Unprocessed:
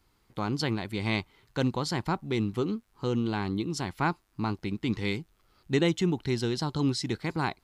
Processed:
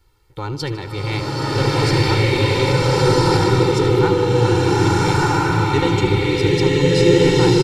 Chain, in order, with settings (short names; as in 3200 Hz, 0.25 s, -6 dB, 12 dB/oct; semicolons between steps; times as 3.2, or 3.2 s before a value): in parallel at -6 dB: soft clip -27 dBFS, distortion -10 dB; on the sum: low shelf 170 Hz +5 dB; comb 2.2 ms, depth 98%; on a send: feedback echo 76 ms, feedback 54%, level -13.5 dB; on the sum: bloom reverb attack 1.42 s, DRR -10.5 dB; gain -1.5 dB